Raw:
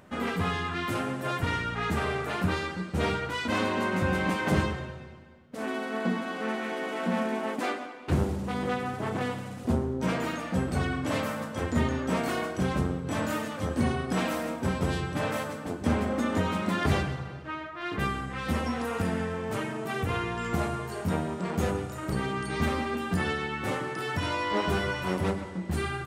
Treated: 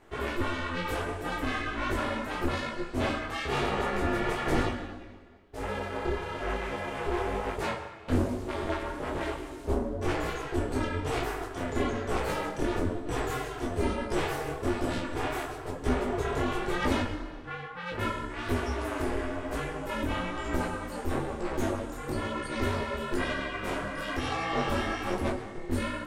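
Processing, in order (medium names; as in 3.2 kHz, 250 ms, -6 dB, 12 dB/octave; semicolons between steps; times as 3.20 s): ring modulator 170 Hz; detune thickener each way 37 cents; trim +5 dB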